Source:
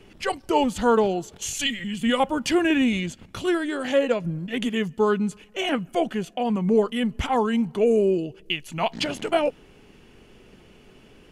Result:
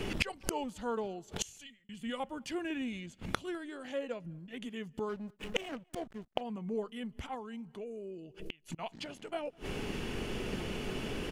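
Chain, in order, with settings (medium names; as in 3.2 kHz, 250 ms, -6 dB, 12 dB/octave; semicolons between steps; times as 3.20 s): inverted gate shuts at -28 dBFS, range -30 dB; 5.09–6.41 s: hysteresis with a dead band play -54.5 dBFS; echo from a far wall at 35 m, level -29 dB; 1.14–1.89 s: fade out; 7.34–8.79 s: compression 6:1, threshold -54 dBFS, peak gain reduction 19.5 dB; trim +13.5 dB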